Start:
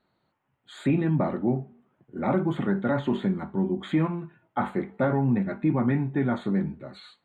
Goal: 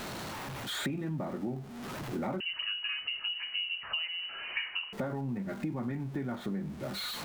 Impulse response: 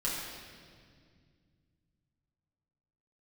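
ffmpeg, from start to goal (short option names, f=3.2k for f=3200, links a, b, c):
-filter_complex "[0:a]aeval=exprs='val(0)+0.5*0.0112*sgn(val(0))':c=same,acompressor=threshold=-38dB:ratio=8,asettb=1/sr,asplit=3[a][b][c];[a]atrim=end=2.404[d];[b]atrim=start=2.4:end=4.93,asetpts=PTS-STARTPTS,afade=t=in:d=0.004:c=qsin,afade=t=out:st=2.526:d=0.004:c=qsin,lowpass=f=2.6k:t=q:w=0.5098,lowpass=f=2.6k:t=q:w=0.6013,lowpass=f=2.6k:t=q:w=0.9,lowpass=f=2.6k:t=q:w=2.563,afreqshift=-3100[e];[c]atrim=start=4.926[f];[d][e]acrossfade=d=0.004:c1=hsin:c2=qsin[g];[g][f]acrossfade=d=0.004:c1=qsin:c2=hsin,volume=5dB"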